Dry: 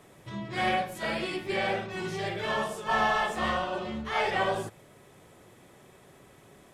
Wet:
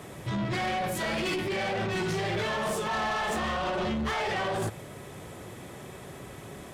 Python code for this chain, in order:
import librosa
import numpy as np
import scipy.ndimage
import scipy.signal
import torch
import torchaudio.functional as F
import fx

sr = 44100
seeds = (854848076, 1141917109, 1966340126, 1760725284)

p1 = scipy.signal.sosfilt(scipy.signal.butter(2, 50.0, 'highpass', fs=sr, output='sos'), x)
p2 = fx.low_shelf(p1, sr, hz=110.0, db=7.5)
p3 = fx.over_compress(p2, sr, threshold_db=-34.0, ratio=-0.5)
p4 = p2 + (p3 * 10.0 ** (3.0 / 20.0))
y = 10.0 ** (-26.0 / 20.0) * np.tanh(p4 / 10.0 ** (-26.0 / 20.0))